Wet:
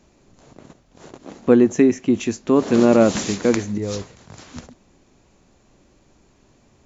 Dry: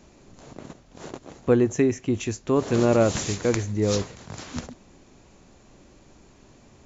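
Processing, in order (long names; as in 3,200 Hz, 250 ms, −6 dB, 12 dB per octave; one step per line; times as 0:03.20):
0:01.19–0:03.78: drawn EQ curve 130 Hz 0 dB, 210 Hz +13 dB, 410 Hz +8 dB, 4,900 Hz +7 dB, 8,400 Hz +4 dB
level −3.5 dB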